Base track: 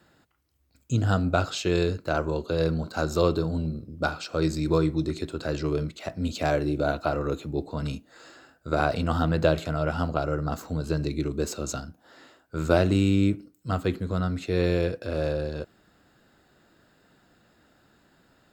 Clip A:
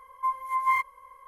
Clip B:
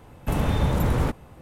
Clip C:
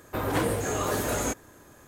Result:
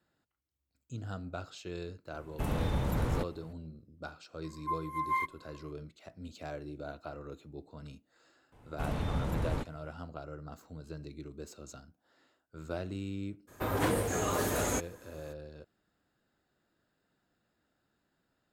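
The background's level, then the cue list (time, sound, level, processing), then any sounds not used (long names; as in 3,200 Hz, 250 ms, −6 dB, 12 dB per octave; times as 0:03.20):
base track −17 dB
0:02.12: mix in B −9 dB
0:04.44: mix in A −7.5 dB
0:08.52: mix in B −11 dB + Bessel low-pass filter 11,000 Hz
0:13.47: mix in C −3.5 dB, fades 0.02 s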